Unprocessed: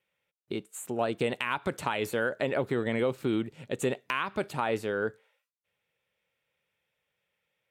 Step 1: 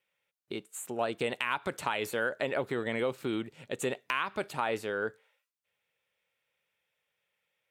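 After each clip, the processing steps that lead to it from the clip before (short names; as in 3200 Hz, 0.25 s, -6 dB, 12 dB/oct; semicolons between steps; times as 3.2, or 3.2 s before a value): low shelf 390 Hz -7.5 dB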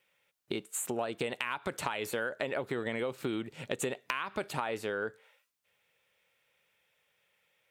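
compressor 5:1, threshold -39 dBFS, peak gain reduction 12.5 dB; gain +7.5 dB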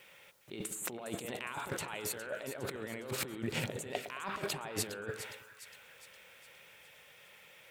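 negative-ratio compressor -47 dBFS, ratio -1; split-band echo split 1300 Hz, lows 0.108 s, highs 0.41 s, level -10.5 dB; gain +5.5 dB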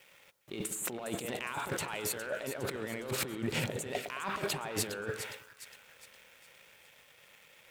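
sample leveller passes 2; gain -4 dB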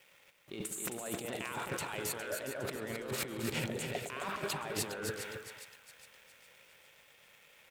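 echo 0.266 s -5.5 dB; gain -3 dB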